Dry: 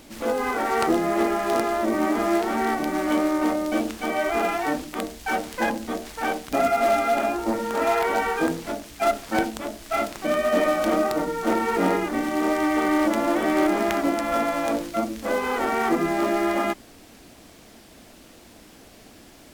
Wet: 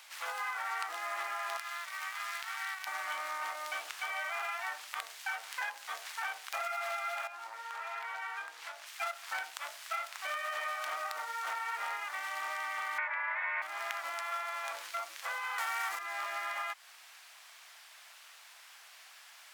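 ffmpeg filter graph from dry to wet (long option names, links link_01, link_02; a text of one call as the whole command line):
ffmpeg -i in.wav -filter_complex "[0:a]asettb=1/sr,asplit=3[link_01][link_02][link_03];[link_01]atrim=end=1.574[link_04];[link_02]atrim=start=1.57:end=2.87,asetpts=PTS-STARTPTS,afade=type=in:duration=0.004:curve=qsin,afade=type=out:start_time=1.296:duration=0.004:curve=qsin,highpass=1400,aeval=exprs='sgn(val(0))*max(abs(val(0))-0.00794,0)':channel_layout=same[link_05];[link_03]atrim=start=2.866[link_06];[link_04][link_05]acrossfade=duration=0.004:curve1=hsin:curve2=qsin[link_07];[link_07][link_06]acrossfade=duration=0.004:curve1=qsin:curve2=hsin,asettb=1/sr,asplit=3[link_08][link_09][link_10];[link_08]atrim=end=7.274[link_11];[link_09]atrim=start=7.27:end=8.87,asetpts=PTS-STARTPTS,afade=type=in:duration=0.004:curve=qsin,afade=type=out:start_time=1.596:duration=0.004:curve=qsin,acompressor=threshold=-32dB:ratio=4:attack=3.2:release=140:knee=1:detection=peak,highshelf=frequency=7200:gain=-7.5[link_12];[link_10]atrim=start=8.866[link_13];[link_11][link_12]acrossfade=duration=0.004:curve1=hsin:curve2=qsin[link_14];[link_14][link_13]acrossfade=duration=0.004:curve1=qsin:curve2=hsin,asettb=1/sr,asplit=3[link_15][link_16][link_17];[link_15]atrim=end=12.984[link_18];[link_16]atrim=start=12.98:end=13.62,asetpts=PTS-STARTPTS,afade=type=in:duration=0.004:curve=qsin,afade=type=out:start_time=0.636:duration=0.004:curve=qsin,lowpass=frequency=1700:width_type=q:width=6,afreqshift=300[link_19];[link_17]atrim=start=13.616[link_20];[link_18][link_19]acrossfade=duration=0.004:curve1=hsin:curve2=qsin[link_21];[link_21][link_20]acrossfade=duration=0.004:curve1=qsin:curve2=hsin,asettb=1/sr,asplit=3[link_22][link_23][link_24];[link_22]atrim=end=15.584[link_25];[link_23]atrim=start=15.58:end=15.99,asetpts=PTS-STARTPTS,afade=type=in:duration=0.004:curve=qsin,afade=type=out:start_time=0.406:duration=0.004:curve=qsin,acontrast=52,highshelf=frequency=3700:gain=10[link_26];[link_24]atrim=start=15.986[link_27];[link_25][link_26]acrossfade=duration=0.004:curve1=hsin:curve2=qsin[link_28];[link_28][link_27]acrossfade=duration=0.004:curve1=qsin:curve2=hsin,highpass=frequency=940:width=0.5412,highpass=frequency=940:width=1.3066,equalizer=frequency=1900:width=0.51:gain=5,acompressor=threshold=-30dB:ratio=4,volume=-5dB" out.wav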